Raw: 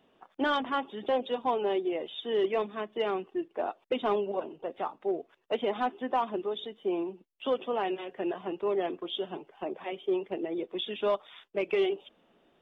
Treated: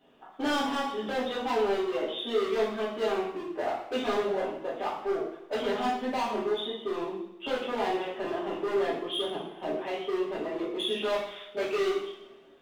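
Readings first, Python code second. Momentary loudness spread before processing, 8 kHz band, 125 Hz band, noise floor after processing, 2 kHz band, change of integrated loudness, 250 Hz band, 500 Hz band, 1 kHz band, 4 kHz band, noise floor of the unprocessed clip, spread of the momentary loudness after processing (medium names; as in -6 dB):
8 LU, no reading, +1.5 dB, -51 dBFS, +3.0 dB, +1.5 dB, +1.0 dB, +1.0 dB, +0.5 dB, +4.0 dB, -68 dBFS, 6 LU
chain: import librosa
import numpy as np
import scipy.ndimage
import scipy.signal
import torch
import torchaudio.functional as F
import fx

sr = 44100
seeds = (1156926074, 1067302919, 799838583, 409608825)

y = np.clip(10.0 ** (30.5 / 20.0) * x, -1.0, 1.0) / 10.0 ** (30.5 / 20.0)
y = fx.rev_double_slope(y, sr, seeds[0], early_s=0.64, late_s=1.6, knee_db=-16, drr_db=-8.5)
y = y * 10.0 ** (-4.0 / 20.0)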